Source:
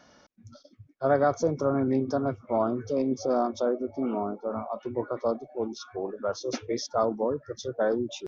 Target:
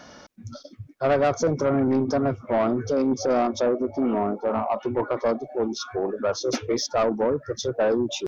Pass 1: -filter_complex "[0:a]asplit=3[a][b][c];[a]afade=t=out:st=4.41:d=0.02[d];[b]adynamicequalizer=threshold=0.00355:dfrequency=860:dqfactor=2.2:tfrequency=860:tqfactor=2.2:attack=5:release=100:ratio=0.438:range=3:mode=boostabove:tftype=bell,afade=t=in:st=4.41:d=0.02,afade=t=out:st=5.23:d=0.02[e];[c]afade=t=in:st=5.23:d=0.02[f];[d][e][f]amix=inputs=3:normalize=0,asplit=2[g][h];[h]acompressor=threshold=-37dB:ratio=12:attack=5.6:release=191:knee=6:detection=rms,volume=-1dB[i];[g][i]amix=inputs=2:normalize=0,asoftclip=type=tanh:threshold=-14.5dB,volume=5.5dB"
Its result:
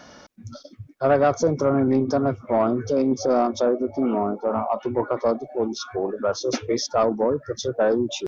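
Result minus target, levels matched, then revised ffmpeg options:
soft clip: distortion -8 dB
-filter_complex "[0:a]asplit=3[a][b][c];[a]afade=t=out:st=4.41:d=0.02[d];[b]adynamicequalizer=threshold=0.00355:dfrequency=860:dqfactor=2.2:tfrequency=860:tqfactor=2.2:attack=5:release=100:ratio=0.438:range=3:mode=boostabove:tftype=bell,afade=t=in:st=4.41:d=0.02,afade=t=out:st=5.23:d=0.02[e];[c]afade=t=in:st=5.23:d=0.02[f];[d][e][f]amix=inputs=3:normalize=0,asplit=2[g][h];[h]acompressor=threshold=-37dB:ratio=12:attack=5.6:release=191:knee=6:detection=rms,volume=-1dB[i];[g][i]amix=inputs=2:normalize=0,asoftclip=type=tanh:threshold=-20.5dB,volume=5.5dB"

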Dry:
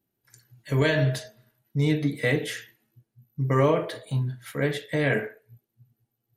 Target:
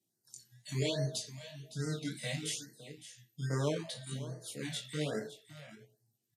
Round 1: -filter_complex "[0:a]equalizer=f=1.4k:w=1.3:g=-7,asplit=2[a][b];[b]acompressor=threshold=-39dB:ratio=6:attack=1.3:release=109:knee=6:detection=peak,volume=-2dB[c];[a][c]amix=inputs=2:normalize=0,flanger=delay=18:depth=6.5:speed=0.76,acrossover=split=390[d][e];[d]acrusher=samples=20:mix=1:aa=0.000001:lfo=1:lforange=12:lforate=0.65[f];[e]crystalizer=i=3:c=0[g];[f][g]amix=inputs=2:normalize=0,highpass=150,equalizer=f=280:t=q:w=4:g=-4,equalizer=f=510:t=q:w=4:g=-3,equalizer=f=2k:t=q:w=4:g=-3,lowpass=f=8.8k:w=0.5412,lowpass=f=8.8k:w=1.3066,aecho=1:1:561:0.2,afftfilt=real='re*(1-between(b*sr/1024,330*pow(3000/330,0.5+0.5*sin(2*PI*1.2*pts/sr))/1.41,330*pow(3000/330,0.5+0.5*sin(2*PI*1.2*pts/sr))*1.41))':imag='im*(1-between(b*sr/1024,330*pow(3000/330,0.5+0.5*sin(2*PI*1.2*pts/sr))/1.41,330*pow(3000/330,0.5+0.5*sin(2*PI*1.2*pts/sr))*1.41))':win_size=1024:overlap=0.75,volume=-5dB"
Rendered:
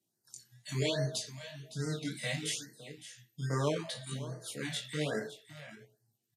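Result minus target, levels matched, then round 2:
compressor: peak gain reduction -6 dB; 1000 Hz band +3.0 dB
-filter_complex "[0:a]equalizer=f=1.4k:w=1.3:g=-16,asplit=2[a][b];[b]acompressor=threshold=-47dB:ratio=6:attack=1.3:release=109:knee=6:detection=peak,volume=-2dB[c];[a][c]amix=inputs=2:normalize=0,flanger=delay=18:depth=6.5:speed=0.76,acrossover=split=390[d][e];[d]acrusher=samples=20:mix=1:aa=0.000001:lfo=1:lforange=12:lforate=0.65[f];[e]crystalizer=i=3:c=0[g];[f][g]amix=inputs=2:normalize=0,highpass=150,equalizer=f=280:t=q:w=4:g=-4,equalizer=f=510:t=q:w=4:g=-3,equalizer=f=2k:t=q:w=4:g=-3,lowpass=f=8.8k:w=0.5412,lowpass=f=8.8k:w=1.3066,aecho=1:1:561:0.2,afftfilt=real='re*(1-between(b*sr/1024,330*pow(3000/330,0.5+0.5*sin(2*PI*1.2*pts/sr))/1.41,330*pow(3000/330,0.5+0.5*sin(2*PI*1.2*pts/sr))*1.41))':imag='im*(1-between(b*sr/1024,330*pow(3000/330,0.5+0.5*sin(2*PI*1.2*pts/sr))/1.41,330*pow(3000/330,0.5+0.5*sin(2*PI*1.2*pts/sr))*1.41))':win_size=1024:overlap=0.75,volume=-5dB"

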